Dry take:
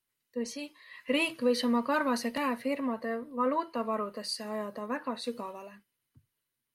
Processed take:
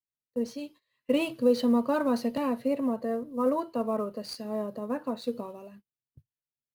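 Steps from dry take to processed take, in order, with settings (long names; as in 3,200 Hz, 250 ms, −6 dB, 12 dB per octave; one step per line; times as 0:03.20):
graphic EQ with 10 bands 125 Hz +6 dB, 1,000 Hz −7 dB, 2,000 Hz −12 dB, 8,000 Hz −9 dB
in parallel at −8.5 dB: sample-rate reduction 11,000 Hz, jitter 20%
on the sum: dynamic equaliser 800 Hz, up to +5 dB, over −41 dBFS, Q 0.8
noise gate −51 dBFS, range −19 dB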